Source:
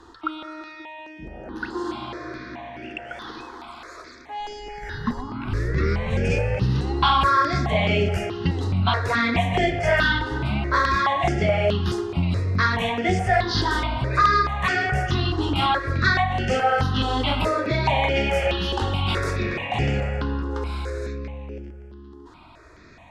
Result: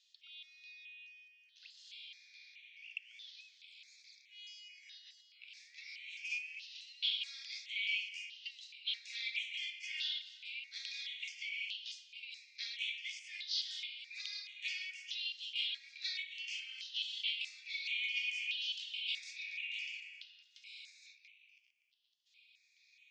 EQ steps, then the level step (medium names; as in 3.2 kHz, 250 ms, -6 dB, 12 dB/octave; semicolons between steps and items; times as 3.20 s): Chebyshev high-pass 2.3 kHz, order 6; resonant low-pass 6.9 kHz, resonance Q 1.5; distance through air 120 m; -6.5 dB